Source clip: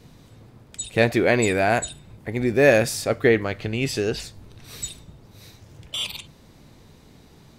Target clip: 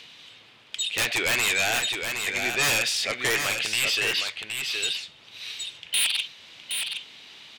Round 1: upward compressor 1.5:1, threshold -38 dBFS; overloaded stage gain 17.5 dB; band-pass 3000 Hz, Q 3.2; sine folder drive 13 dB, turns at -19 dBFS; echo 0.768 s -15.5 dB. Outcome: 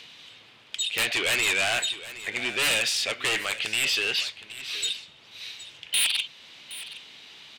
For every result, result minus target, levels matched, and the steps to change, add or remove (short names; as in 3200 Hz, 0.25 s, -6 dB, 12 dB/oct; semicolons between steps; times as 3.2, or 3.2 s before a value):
overloaded stage: distortion +13 dB; echo-to-direct -9.5 dB
change: overloaded stage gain 9 dB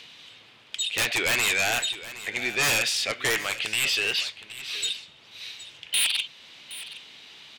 echo-to-direct -9.5 dB
change: echo 0.768 s -6 dB